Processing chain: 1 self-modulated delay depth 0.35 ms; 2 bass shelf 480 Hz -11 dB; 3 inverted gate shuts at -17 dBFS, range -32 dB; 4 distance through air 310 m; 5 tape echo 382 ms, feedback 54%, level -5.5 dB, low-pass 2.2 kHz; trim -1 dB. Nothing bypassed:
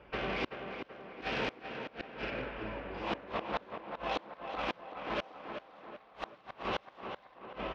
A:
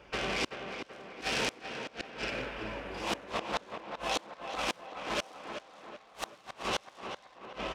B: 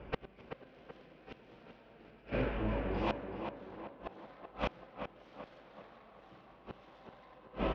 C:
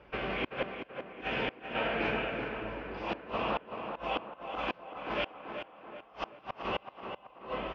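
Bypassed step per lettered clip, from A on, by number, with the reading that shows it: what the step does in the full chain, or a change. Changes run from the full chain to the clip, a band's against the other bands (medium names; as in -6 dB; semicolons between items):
4, 4 kHz band +6.0 dB; 2, crest factor change +3.0 dB; 1, crest factor change -2.0 dB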